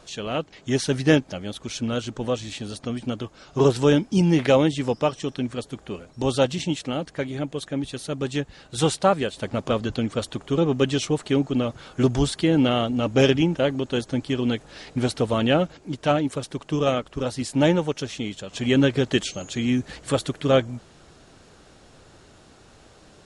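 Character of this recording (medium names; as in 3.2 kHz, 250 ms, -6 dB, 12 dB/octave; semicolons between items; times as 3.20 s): noise floor -52 dBFS; spectral tilt -5.5 dB/octave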